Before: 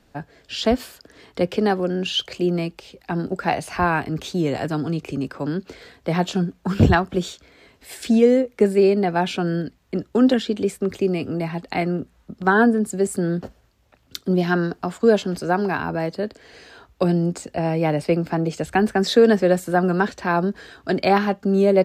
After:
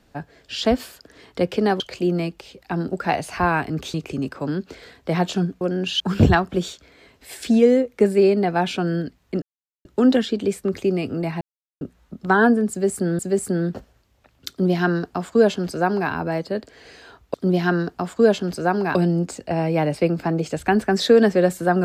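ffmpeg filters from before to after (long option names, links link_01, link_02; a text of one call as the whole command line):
ffmpeg -i in.wav -filter_complex "[0:a]asplit=11[link_01][link_02][link_03][link_04][link_05][link_06][link_07][link_08][link_09][link_10][link_11];[link_01]atrim=end=1.802[link_12];[link_02]atrim=start=2.188:end=4.332[link_13];[link_03]atrim=start=4.928:end=6.602[link_14];[link_04]atrim=start=1.798:end=2.192[link_15];[link_05]atrim=start=6.598:end=10.02,asetpts=PTS-STARTPTS,afade=type=out:start_time=3.418:duration=0.004:curve=hsin,apad=pad_dur=0.43[link_16];[link_06]atrim=start=10.02:end=11.58,asetpts=PTS-STARTPTS,afade=type=in:duration=0.004:curve=hsin,afade=type=out:start_time=1.556:duration=0.004:curve=hsin[link_17];[link_07]atrim=start=11.58:end=11.98,asetpts=PTS-STARTPTS,volume=0[link_18];[link_08]atrim=start=11.98:end=13.362,asetpts=PTS-STARTPTS,afade=type=in:duration=0.004:curve=hsin[link_19];[link_09]atrim=start=12.868:end=17.022[link_20];[link_10]atrim=start=14.178:end=15.792[link_21];[link_11]atrim=start=17.018[link_22];[link_12][link_13]acrossfade=duration=0.004:curve1=hsin:curve2=hsin[link_23];[link_23][link_14]acrossfade=duration=0.004:curve1=hsin:curve2=hsin[link_24];[link_24][link_15]acrossfade=duration=0.004:curve1=hsin:curve2=hsin[link_25];[link_16][link_17][link_18][link_19]concat=n=4:v=0:a=1[link_26];[link_25][link_26]acrossfade=duration=0.004:curve1=hsin:curve2=hsin[link_27];[link_27][link_20]acrossfade=duration=0.004:curve1=hsin:curve2=hsin[link_28];[link_28][link_21]acrossfade=duration=0.004:curve1=hsin:curve2=hsin[link_29];[link_29][link_22]acrossfade=duration=0.004:curve1=hsin:curve2=hsin" out.wav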